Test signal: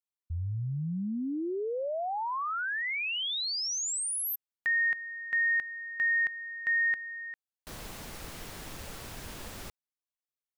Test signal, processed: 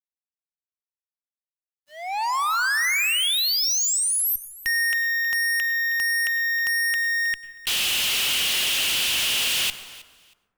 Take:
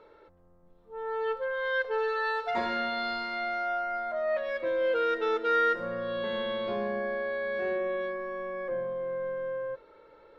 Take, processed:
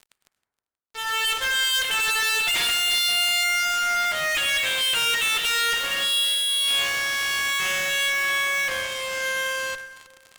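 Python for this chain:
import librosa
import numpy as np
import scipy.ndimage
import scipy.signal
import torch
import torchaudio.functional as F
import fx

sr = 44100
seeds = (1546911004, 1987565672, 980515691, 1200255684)

y = fx.rider(x, sr, range_db=3, speed_s=2.0)
y = fx.highpass_res(y, sr, hz=2900.0, q=5.1)
y = fx.fuzz(y, sr, gain_db=54.0, gate_db=-55.0)
y = fx.echo_feedback(y, sr, ms=317, feedback_pct=21, wet_db=-19.5)
y = fx.rev_plate(y, sr, seeds[0], rt60_s=1.4, hf_ratio=0.25, predelay_ms=85, drr_db=13.0)
y = y * 10.0 ** (-8.5 / 20.0)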